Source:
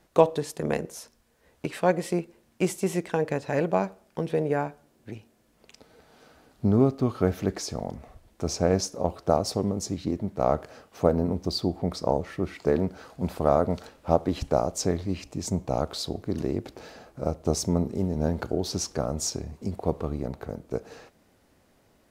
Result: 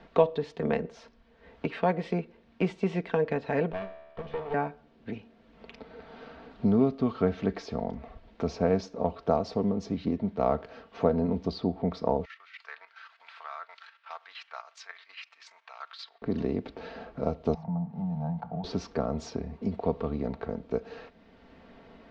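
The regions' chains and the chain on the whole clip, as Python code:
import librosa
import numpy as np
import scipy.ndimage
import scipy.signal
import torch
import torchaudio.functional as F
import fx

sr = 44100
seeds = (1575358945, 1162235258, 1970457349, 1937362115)

y = fx.chain(x, sr, fx.lower_of_two(delay_ms=1.7),
    fx.comb_fb(f0_hz=73.0, decay_s=1.0, harmonics='all', damping=0.0, mix_pct=70), at=(3.72, 4.54))
y = fx.chain(y, sr, fx.highpass(hz=1400.0, slope=24),
    fx.level_steps(step_db=11), at=(12.25, 16.22))
y = fx.chain(y, sr, fx.law_mismatch(coded='mu'),
    fx.double_bandpass(hz=360.0, octaves=2.3),
    fx.band_squash(depth_pct=70), at=(17.54, 18.64))
y = scipy.signal.sosfilt(scipy.signal.butter(4, 3900.0, 'lowpass', fs=sr, output='sos'), y)
y = y + 0.5 * np.pad(y, (int(4.4 * sr / 1000.0), 0))[:len(y)]
y = fx.band_squash(y, sr, depth_pct=40)
y = F.gain(torch.from_numpy(y), -2.0).numpy()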